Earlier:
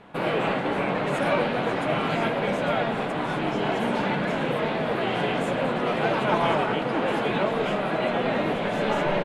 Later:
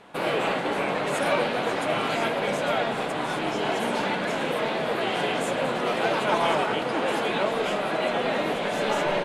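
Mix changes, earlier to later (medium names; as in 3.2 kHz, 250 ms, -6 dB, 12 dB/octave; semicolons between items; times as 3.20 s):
speech: entry -1.60 s; master: add tone controls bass -7 dB, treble +9 dB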